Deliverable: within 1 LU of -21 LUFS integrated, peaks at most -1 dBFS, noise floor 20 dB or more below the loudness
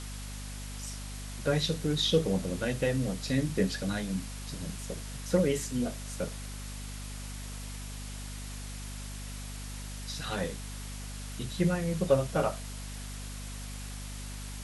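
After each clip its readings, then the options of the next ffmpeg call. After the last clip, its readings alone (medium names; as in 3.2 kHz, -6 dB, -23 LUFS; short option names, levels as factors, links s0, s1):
hum 50 Hz; highest harmonic 250 Hz; hum level -38 dBFS; noise floor -40 dBFS; noise floor target -54 dBFS; loudness -33.5 LUFS; peak level -12.0 dBFS; loudness target -21.0 LUFS
-> -af "bandreject=f=50:t=h:w=4,bandreject=f=100:t=h:w=4,bandreject=f=150:t=h:w=4,bandreject=f=200:t=h:w=4,bandreject=f=250:t=h:w=4"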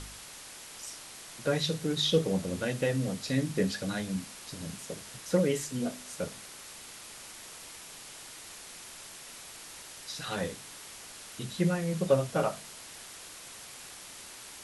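hum not found; noise floor -47 dBFS; noise floor target -54 dBFS
-> -af "afftdn=nr=7:nf=-47"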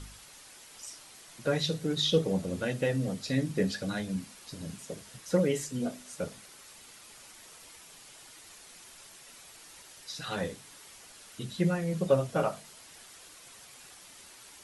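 noise floor -53 dBFS; loudness -31.5 LUFS; peak level -12.0 dBFS; loudness target -21.0 LUFS
-> -af "volume=3.35"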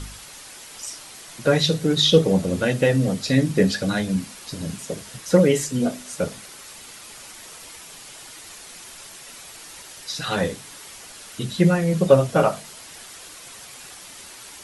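loudness -21.0 LUFS; peak level -1.5 dBFS; noise floor -42 dBFS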